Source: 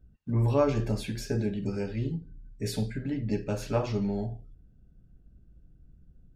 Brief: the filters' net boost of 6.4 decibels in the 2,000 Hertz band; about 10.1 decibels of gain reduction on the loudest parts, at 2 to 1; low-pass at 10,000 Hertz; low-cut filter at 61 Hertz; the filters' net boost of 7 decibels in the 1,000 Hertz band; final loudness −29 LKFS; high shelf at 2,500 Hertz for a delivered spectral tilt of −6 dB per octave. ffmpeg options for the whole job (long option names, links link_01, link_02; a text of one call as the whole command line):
ffmpeg -i in.wav -af "highpass=61,lowpass=10000,equalizer=frequency=1000:width_type=o:gain=7,equalizer=frequency=2000:width_type=o:gain=4.5,highshelf=frequency=2500:gain=3.5,acompressor=threshold=-35dB:ratio=2,volume=6.5dB" out.wav